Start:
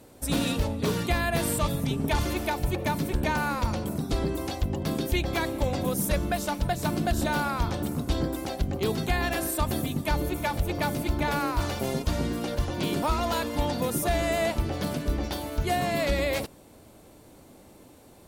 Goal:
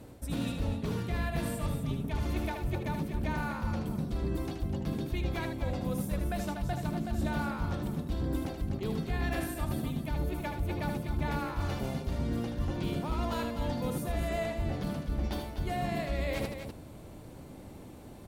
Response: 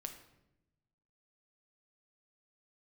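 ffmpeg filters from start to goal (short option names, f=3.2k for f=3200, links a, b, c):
-af "bass=f=250:g=7,treble=f=4k:g=-5,areverse,acompressor=threshold=-31dB:ratio=6,areverse,aecho=1:1:77|249:0.473|0.376"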